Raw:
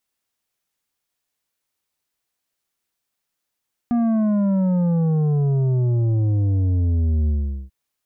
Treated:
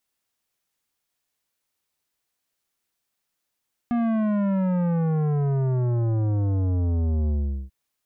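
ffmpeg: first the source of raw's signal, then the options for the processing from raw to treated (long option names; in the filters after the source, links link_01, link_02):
-f lavfi -i "aevalsrc='0.141*clip((3.79-t)/0.42,0,1)*tanh(2.51*sin(2*PI*240*3.79/log(65/240)*(exp(log(65/240)*t/3.79)-1)))/tanh(2.51)':duration=3.79:sample_rate=44100"
-af "asoftclip=type=tanh:threshold=-20.5dB"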